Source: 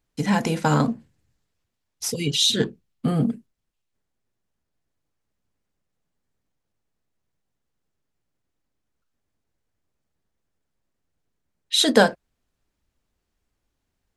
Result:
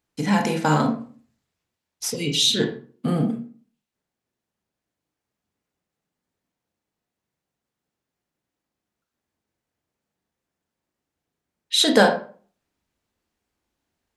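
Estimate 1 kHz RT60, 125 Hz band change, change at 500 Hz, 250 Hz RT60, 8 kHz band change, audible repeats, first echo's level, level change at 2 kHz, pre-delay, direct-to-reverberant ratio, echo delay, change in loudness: 0.40 s, −1.0 dB, +1.0 dB, 0.55 s, 0.0 dB, no echo audible, no echo audible, +1.0 dB, 25 ms, 3.5 dB, no echo audible, +0.5 dB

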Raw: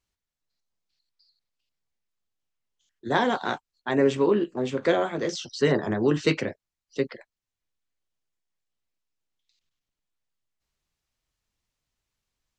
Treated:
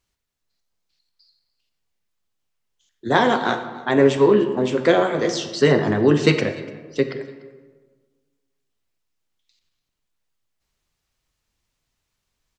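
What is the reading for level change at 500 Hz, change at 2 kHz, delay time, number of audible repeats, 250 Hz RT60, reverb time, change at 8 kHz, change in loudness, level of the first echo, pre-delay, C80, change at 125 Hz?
+7.0 dB, +6.5 dB, 293 ms, 1, 1.6 s, 1.4 s, +6.0 dB, +6.5 dB, −22.5 dB, 32 ms, 11.0 dB, +7.5 dB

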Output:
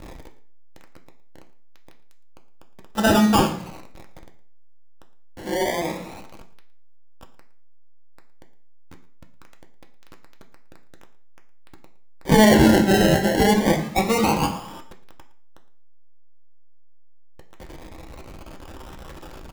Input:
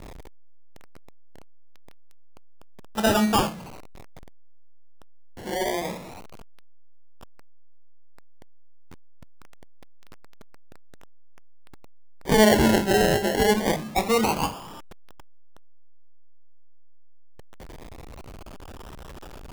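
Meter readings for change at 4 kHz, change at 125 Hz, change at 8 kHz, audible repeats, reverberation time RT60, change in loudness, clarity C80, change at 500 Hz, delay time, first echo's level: +2.0 dB, +6.5 dB, +2.0 dB, 1, 0.50 s, +3.5 dB, 14.5 dB, +2.0 dB, 113 ms, −19.5 dB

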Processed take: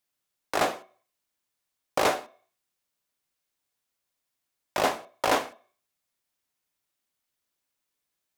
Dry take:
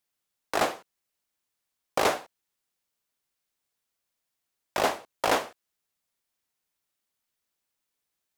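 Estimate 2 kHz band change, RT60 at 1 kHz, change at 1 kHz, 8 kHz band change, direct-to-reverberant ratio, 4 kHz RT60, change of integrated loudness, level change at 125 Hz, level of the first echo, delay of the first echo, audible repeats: +0.5 dB, 0.50 s, +0.5 dB, 0.0 dB, 10.5 dB, 0.45 s, +0.5 dB, +1.0 dB, no echo audible, no echo audible, no echo audible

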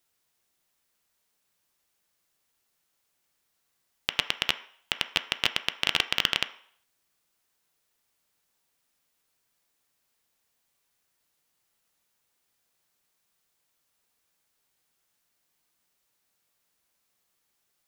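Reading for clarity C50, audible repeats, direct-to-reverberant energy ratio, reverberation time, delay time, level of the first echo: 14.5 dB, no echo audible, 9.5 dB, 0.60 s, no echo audible, no echo audible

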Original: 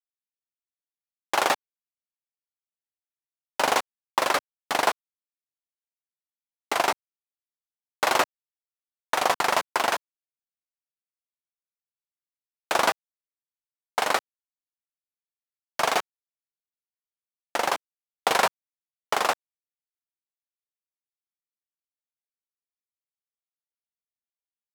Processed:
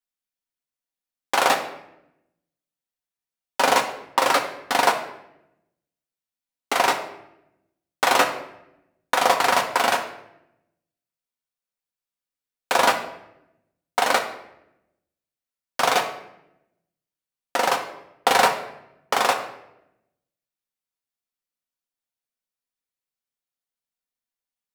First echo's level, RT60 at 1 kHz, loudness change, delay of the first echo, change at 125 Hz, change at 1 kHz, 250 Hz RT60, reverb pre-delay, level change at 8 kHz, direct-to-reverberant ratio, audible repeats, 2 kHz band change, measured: no echo audible, 0.75 s, +4.0 dB, no echo audible, +5.0 dB, +4.5 dB, 1.2 s, 4 ms, +3.5 dB, 3.0 dB, no echo audible, +4.0 dB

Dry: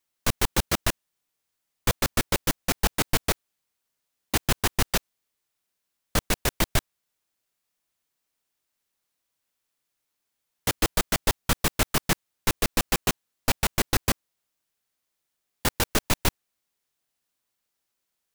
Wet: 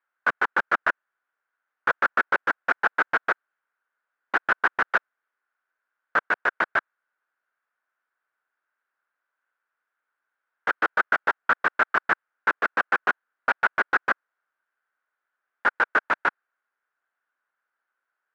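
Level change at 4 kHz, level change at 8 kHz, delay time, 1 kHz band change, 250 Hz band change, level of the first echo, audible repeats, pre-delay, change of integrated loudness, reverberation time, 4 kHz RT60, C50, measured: −13.0 dB, below −25 dB, no echo audible, +7.0 dB, −10.5 dB, no echo audible, no echo audible, no reverb audible, +2.0 dB, no reverb audible, no reverb audible, no reverb audible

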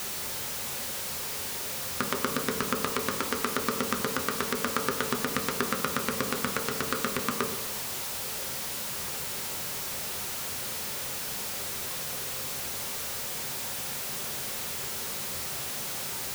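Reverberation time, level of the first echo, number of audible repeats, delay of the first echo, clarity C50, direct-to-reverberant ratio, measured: 1.1 s, no echo audible, no echo audible, no echo audible, 7.5 dB, 3.0 dB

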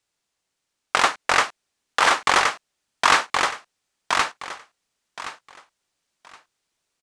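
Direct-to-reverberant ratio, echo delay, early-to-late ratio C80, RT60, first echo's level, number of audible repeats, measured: no reverb audible, 1,071 ms, no reverb audible, no reverb audible, −3.0 dB, 3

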